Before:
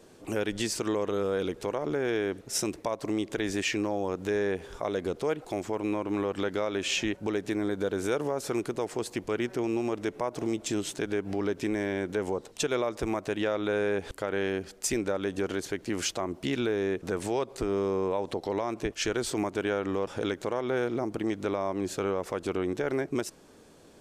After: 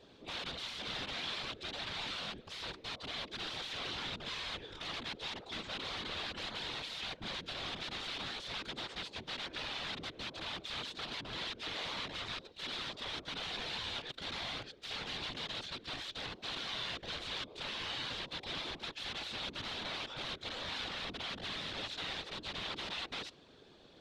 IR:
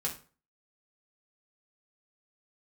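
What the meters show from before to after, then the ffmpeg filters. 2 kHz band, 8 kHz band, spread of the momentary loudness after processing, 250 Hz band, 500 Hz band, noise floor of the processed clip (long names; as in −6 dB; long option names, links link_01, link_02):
−5.0 dB, −15.5 dB, 3 LU, −20.0 dB, −21.0 dB, −59 dBFS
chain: -af "aeval=exprs='(mod(44.7*val(0)+1,2)-1)/44.7':channel_layout=same,lowpass=frequency=3700:width_type=q:width=3.7,afftfilt=real='hypot(re,im)*cos(2*PI*random(0))':imag='hypot(re,im)*sin(2*PI*random(1))':win_size=512:overlap=0.75"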